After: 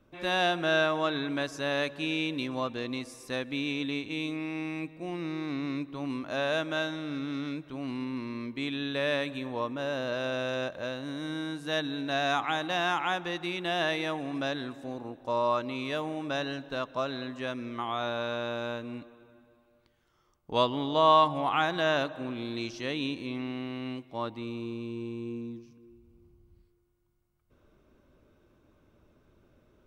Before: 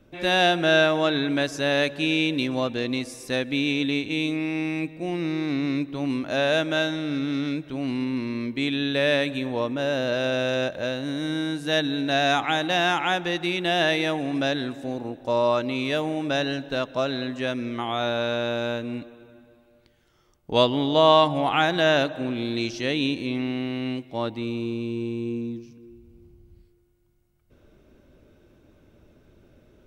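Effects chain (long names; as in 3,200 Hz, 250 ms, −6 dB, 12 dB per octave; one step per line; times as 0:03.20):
parametric band 1,100 Hz +8 dB 0.57 octaves
level −8 dB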